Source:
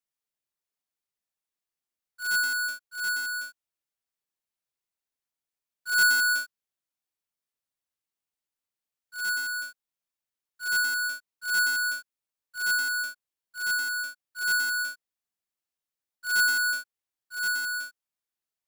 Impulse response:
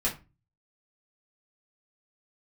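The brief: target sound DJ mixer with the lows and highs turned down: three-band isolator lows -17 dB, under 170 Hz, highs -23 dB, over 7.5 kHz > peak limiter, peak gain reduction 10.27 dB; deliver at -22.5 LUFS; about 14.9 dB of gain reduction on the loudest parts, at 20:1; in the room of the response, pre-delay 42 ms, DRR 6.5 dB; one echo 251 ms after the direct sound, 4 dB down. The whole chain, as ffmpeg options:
-filter_complex "[0:a]acompressor=threshold=0.0178:ratio=20,aecho=1:1:251:0.631,asplit=2[s0][s1];[1:a]atrim=start_sample=2205,adelay=42[s2];[s1][s2]afir=irnorm=-1:irlink=0,volume=0.2[s3];[s0][s3]amix=inputs=2:normalize=0,acrossover=split=170 7500:gain=0.141 1 0.0708[s4][s5][s6];[s4][s5][s6]amix=inputs=3:normalize=0,volume=7.94,alimiter=limit=0.112:level=0:latency=1"

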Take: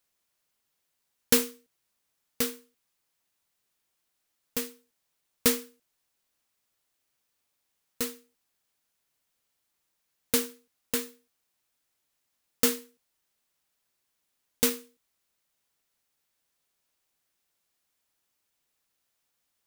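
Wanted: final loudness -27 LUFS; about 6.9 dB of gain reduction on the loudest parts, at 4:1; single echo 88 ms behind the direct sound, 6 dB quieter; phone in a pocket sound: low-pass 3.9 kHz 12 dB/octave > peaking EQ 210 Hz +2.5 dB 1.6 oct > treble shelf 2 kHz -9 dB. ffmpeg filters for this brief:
-af "acompressor=threshold=0.0501:ratio=4,lowpass=3900,equalizer=f=210:t=o:w=1.6:g=2.5,highshelf=f=2000:g=-9,aecho=1:1:88:0.501,volume=3.76"

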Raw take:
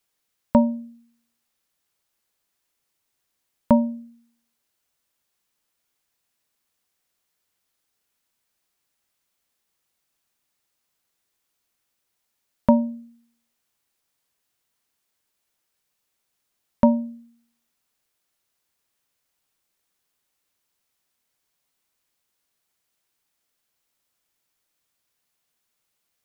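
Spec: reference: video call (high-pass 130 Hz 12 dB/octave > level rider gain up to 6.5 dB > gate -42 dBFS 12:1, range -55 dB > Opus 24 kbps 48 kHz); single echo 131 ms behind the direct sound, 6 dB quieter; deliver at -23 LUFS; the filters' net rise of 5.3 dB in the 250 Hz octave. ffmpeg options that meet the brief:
-af "highpass=130,equalizer=f=250:t=o:g=6,aecho=1:1:131:0.501,dynaudnorm=m=2.11,agate=range=0.00178:threshold=0.00794:ratio=12,volume=0.562" -ar 48000 -c:a libopus -b:a 24k

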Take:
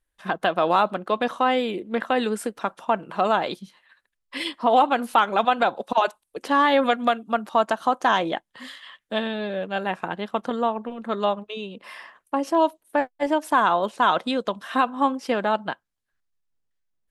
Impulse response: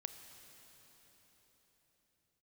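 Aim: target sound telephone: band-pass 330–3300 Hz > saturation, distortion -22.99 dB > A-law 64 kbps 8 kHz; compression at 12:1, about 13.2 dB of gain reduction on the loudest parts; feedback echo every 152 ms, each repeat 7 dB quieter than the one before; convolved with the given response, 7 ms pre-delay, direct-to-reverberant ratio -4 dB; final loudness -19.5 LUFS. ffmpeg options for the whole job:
-filter_complex "[0:a]acompressor=threshold=0.0447:ratio=12,aecho=1:1:152|304|456|608|760:0.447|0.201|0.0905|0.0407|0.0183,asplit=2[s0][s1];[1:a]atrim=start_sample=2205,adelay=7[s2];[s1][s2]afir=irnorm=-1:irlink=0,volume=2.24[s3];[s0][s3]amix=inputs=2:normalize=0,highpass=330,lowpass=3300,asoftclip=threshold=0.2,volume=2.99" -ar 8000 -c:a pcm_alaw

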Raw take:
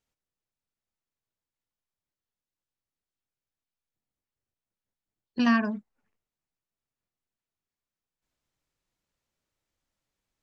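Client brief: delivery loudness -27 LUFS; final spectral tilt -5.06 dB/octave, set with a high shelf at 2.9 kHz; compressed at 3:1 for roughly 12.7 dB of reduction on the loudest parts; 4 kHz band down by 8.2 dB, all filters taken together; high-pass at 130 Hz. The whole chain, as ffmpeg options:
-af "highpass=130,highshelf=f=2900:g=-5.5,equalizer=f=4000:t=o:g=-8,acompressor=threshold=0.0158:ratio=3,volume=3.98"

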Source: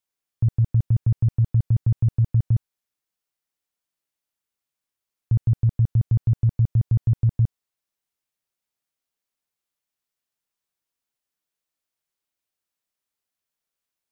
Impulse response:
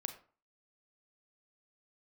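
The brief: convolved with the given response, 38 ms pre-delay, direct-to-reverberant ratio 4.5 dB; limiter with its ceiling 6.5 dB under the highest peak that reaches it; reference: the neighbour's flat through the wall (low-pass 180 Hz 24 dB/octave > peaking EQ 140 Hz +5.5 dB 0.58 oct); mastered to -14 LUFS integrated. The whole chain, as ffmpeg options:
-filter_complex "[0:a]alimiter=limit=0.106:level=0:latency=1,asplit=2[s0][s1];[1:a]atrim=start_sample=2205,adelay=38[s2];[s1][s2]afir=irnorm=-1:irlink=0,volume=0.708[s3];[s0][s3]amix=inputs=2:normalize=0,lowpass=f=180:w=0.5412,lowpass=f=180:w=1.3066,equalizer=f=140:t=o:w=0.58:g=5.5,volume=3.98"

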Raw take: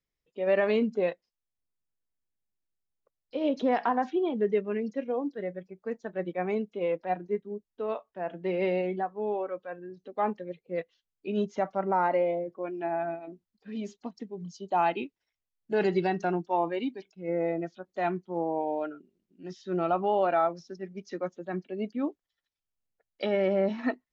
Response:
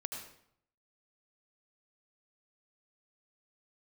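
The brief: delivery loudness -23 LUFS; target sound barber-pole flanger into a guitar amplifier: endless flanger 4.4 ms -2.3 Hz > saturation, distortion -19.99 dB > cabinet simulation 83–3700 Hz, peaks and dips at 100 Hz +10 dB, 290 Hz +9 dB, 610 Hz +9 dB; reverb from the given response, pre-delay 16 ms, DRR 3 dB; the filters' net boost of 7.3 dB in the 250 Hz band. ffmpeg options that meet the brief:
-filter_complex "[0:a]equalizer=f=250:t=o:g=4,asplit=2[s0][s1];[1:a]atrim=start_sample=2205,adelay=16[s2];[s1][s2]afir=irnorm=-1:irlink=0,volume=0.708[s3];[s0][s3]amix=inputs=2:normalize=0,asplit=2[s4][s5];[s5]adelay=4.4,afreqshift=-2.3[s6];[s4][s6]amix=inputs=2:normalize=1,asoftclip=threshold=0.133,highpass=83,equalizer=f=100:t=q:w=4:g=10,equalizer=f=290:t=q:w=4:g=9,equalizer=f=610:t=q:w=4:g=9,lowpass=f=3700:w=0.5412,lowpass=f=3700:w=1.3066,volume=1.68"

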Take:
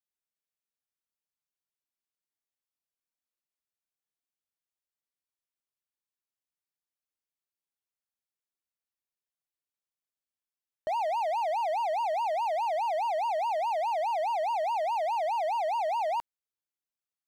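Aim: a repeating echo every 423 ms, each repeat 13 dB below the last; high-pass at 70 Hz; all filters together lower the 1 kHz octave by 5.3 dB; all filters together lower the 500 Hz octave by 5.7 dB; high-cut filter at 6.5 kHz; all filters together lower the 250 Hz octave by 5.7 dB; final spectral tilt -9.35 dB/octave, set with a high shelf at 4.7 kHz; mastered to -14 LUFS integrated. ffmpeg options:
-af "highpass=70,lowpass=6500,equalizer=f=250:t=o:g=-5.5,equalizer=f=500:t=o:g=-5.5,equalizer=f=1000:t=o:g=-4,highshelf=f=4700:g=-3.5,aecho=1:1:423|846|1269:0.224|0.0493|0.0108,volume=10.6"

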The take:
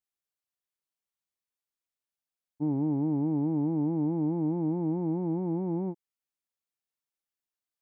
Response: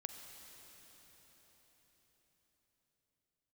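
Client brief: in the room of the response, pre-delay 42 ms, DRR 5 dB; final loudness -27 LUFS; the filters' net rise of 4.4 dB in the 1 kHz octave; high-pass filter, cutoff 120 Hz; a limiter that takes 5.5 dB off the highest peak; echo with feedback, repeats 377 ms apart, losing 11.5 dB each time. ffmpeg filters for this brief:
-filter_complex "[0:a]highpass=120,equalizer=f=1000:t=o:g=5.5,alimiter=level_in=1.19:limit=0.0631:level=0:latency=1,volume=0.841,aecho=1:1:377|754|1131:0.266|0.0718|0.0194,asplit=2[s0][s1];[1:a]atrim=start_sample=2205,adelay=42[s2];[s1][s2]afir=irnorm=-1:irlink=0,volume=0.794[s3];[s0][s3]amix=inputs=2:normalize=0,volume=1.68"

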